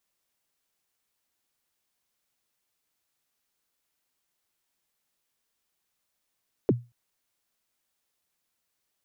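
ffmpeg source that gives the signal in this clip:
-f lavfi -i "aevalsrc='0.2*pow(10,-3*t/0.26)*sin(2*PI*(500*0.033/log(120/500)*(exp(log(120/500)*min(t,0.033)/0.033)-1)+120*max(t-0.033,0)))':d=0.23:s=44100"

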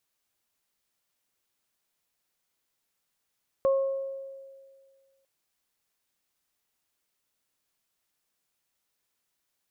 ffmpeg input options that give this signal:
-f lavfi -i "aevalsrc='0.112*pow(10,-3*t/1.89)*sin(2*PI*542*t)+0.0266*pow(10,-3*t/0.84)*sin(2*PI*1084*t)':d=1.6:s=44100"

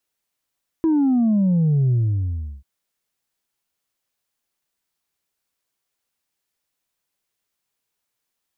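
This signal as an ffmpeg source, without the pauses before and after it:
-f lavfi -i "aevalsrc='0.178*clip((1.79-t)/0.72,0,1)*tanh(1.19*sin(2*PI*330*1.79/log(65/330)*(exp(log(65/330)*t/1.79)-1)))/tanh(1.19)':d=1.79:s=44100"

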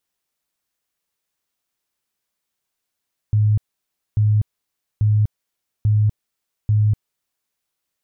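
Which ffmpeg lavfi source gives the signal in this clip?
-f lavfi -i "aevalsrc='0.237*sin(2*PI*106*mod(t,0.84))*lt(mod(t,0.84),26/106)':d=4.2:s=44100"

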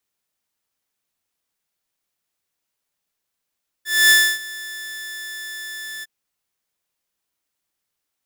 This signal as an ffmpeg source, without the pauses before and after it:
-f lavfi -i "aevalsrc='0.473*(2*mod(1750*t,1)-1)':d=2.208:s=44100,afade=t=in:d=0.247,afade=t=out:st=0.247:d=0.285:silence=0.0891,afade=t=out:st=2.18:d=0.028"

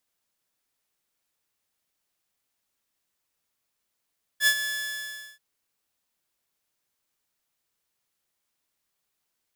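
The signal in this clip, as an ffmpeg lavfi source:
-f lavfi -i "aevalsrc='0.211*(2*mod(1720*t,1)-1)':d=0.985:s=44100,afade=t=in:d=0.069,afade=t=out:st=0.069:d=0.071:silence=0.282,afade=t=out:st=0.23:d=0.755"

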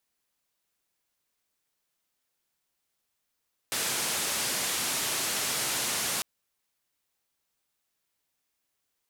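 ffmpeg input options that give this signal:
-f lavfi -i "anoisesrc=c=white:d=2.5:r=44100:seed=1,highpass=f=110,lowpass=f=11000,volume=-22.2dB"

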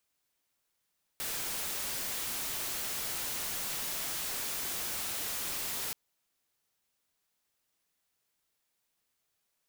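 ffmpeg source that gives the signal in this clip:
-f lavfi -i "anoisesrc=c=white:a=0.0274:d=4.73:r=44100:seed=1"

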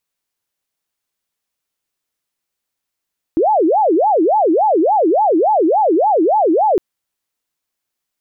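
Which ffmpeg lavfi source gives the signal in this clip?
-f lavfi -i "aevalsrc='0.316*sin(2*PI*(591.5*t-280.5/(2*PI*3.5)*sin(2*PI*3.5*t)))':d=3.41:s=44100"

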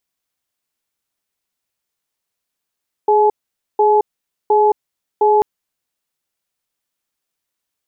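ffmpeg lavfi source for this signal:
-f lavfi -i "aevalsrc='0.251*(sin(2*PI*419*t)+sin(2*PI*852*t))*clip(min(mod(t,0.71),0.22-mod(t,0.71))/0.005,0,1)':d=2.34:s=44100"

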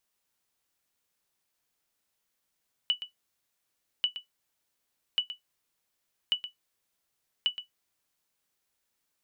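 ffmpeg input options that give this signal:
-f lavfi -i "aevalsrc='0.141*(sin(2*PI*2960*mod(t,1.14))*exp(-6.91*mod(t,1.14)/0.13)+0.251*sin(2*PI*2960*max(mod(t,1.14)-0.12,0))*exp(-6.91*max(mod(t,1.14)-0.12,0)/0.13))':d=5.7:s=44100"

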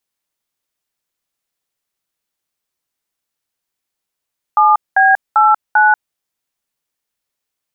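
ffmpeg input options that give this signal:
-f lavfi -i "aevalsrc='0.335*clip(min(mod(t,0.394),0.188-mod(t,0.394))/0.002,0,1)*(eq(floor(t/0.394),0)*(sin(2*PI*852*mod(t,0.394))+sin(2*PI*1209*mod(t,0.394)))+eq(floor(t/0.394),1)*(sin(2*PI*770*mod(t,0.394))+sin(2*PI*1633*mod(t,0.394)))+eq(floor(t/0.394),2)*(sin(2*PI*852*mod(t,0.394))+sin(2*PI*1336*mod(t,0.394)))+eq(floor(t/0.394),3)*(sin(2*PI*852*mod(t,0.394))+sin(2*PI*1477*mod(t,0.394))))':d=1.576:s=44100"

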